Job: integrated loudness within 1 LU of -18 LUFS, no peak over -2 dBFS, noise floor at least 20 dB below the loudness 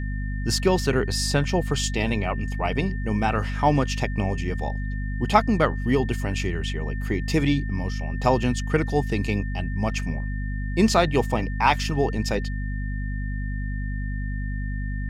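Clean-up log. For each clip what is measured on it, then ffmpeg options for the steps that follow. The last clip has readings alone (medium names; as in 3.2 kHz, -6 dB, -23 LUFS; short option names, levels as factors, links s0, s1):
hum 50 Hz; highest harmonic 250 Hz; hum level -25 dBFS; steady tone 1.8 kHz; tone level -39 dBFS; loudness -25.0 LUFS; peak level -4.0 dBFS; loudness target -18.0 LUFS
-> -af "bandreject=f=50:t=h:w=4,bandreject=f=100:t=h:w=4,bandreject=f=150:t=h:w=4,bandreject=f=200:t=h:w=4,bandreject=f=250:t=h:w=4"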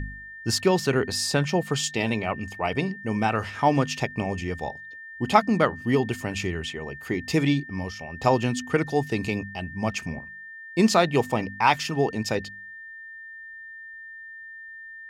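hum not found; steady tone 1.8 kHz; tone level -39 dBFS
-> -af "bandreject=f=1800:w=30"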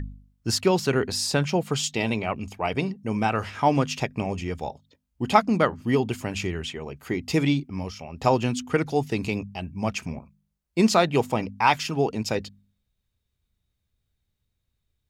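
steady tone not found; loudness -25.5 LUFS; peak level -4.5 dBFS; loudness target -18.0 LUFS
-> -af "volume=2.37,alimiter=limit=0.794:level=0:latency=1"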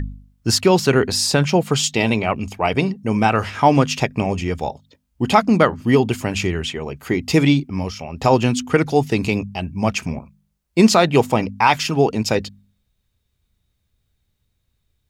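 loudness -18.5 LUFS; peak level -2.0 dBFS; noise floor -71 dBFS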